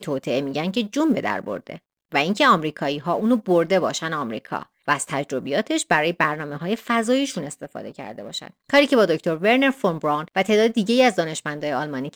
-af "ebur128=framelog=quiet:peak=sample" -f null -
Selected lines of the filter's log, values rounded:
Integrated loudness:
  I:         -21.3 LUFS
  Threshold: -31.8 LUFS
Loudness range:
  LRA:         3.9 LU
  Threshold: -41.8 LUFS
  LRA low:   -23.5 LUFS
  LRA high:  -19.5 LUFS
Sample peak:
  Peak:       -4.7 dBFS